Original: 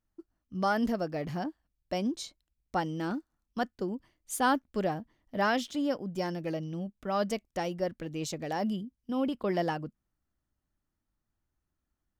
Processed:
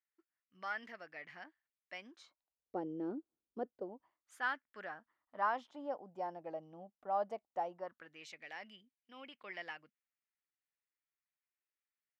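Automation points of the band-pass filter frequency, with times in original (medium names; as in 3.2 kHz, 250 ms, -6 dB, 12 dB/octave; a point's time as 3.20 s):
band-pass filter, Q 3.3
2.04 s 2 kHz
2.79 s 400 Hz
3.59 s 400 Hz
4.52 s 2 kHz
5.86 s 790 Hz
7.69 s 790 Hz
8.27 s 2.2 kHz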